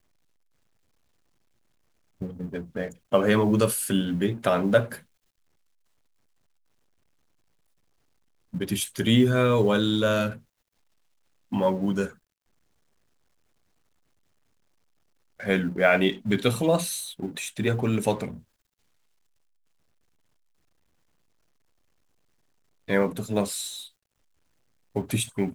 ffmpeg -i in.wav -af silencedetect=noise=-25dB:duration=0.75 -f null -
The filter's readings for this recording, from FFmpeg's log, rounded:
silence_start: 0.00
silence_end: 2.22 | silence_duration: 2.22
silence_start: 4.84
silence_end: 8.55 | silence_duration: 3.70
silence_start: 10.30
silence_end: 11.53 | silence_duration: 1.23
silence_start: 12.05
silence_end: 15.47 | silence_duration: 3.42
silence_start: 18.28
silence_end: 22.90 | silence_duration: 4.62
silence_start: 23.67
silence_end: 24.96 | silence_duration: 1.29